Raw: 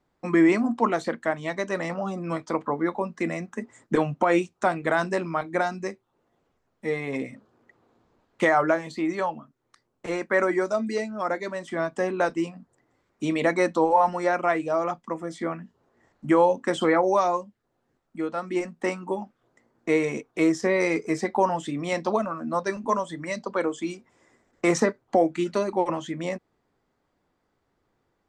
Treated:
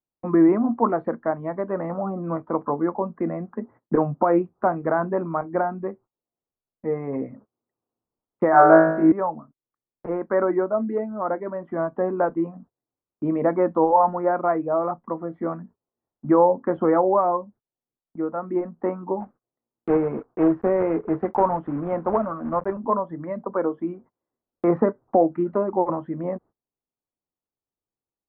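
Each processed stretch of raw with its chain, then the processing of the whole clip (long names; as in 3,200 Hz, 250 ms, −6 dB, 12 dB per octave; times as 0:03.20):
0:08.51–0:09.12: parametric band 1,600 Hz +7.5 dB 0.32 octaves + flutter between parallel walls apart 3.2 metres, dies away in 0.69 s
0:19.20–0:22.73: one scale factor per block 3 bits + highs frequency-modulated by the lows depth 0.14 ms
whole clip: inverse Chebyshev low-pass filter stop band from 6,900 Hz, stop band 80 dB; noise gate −49 dBFS, range −26 dB; level +2.5 dB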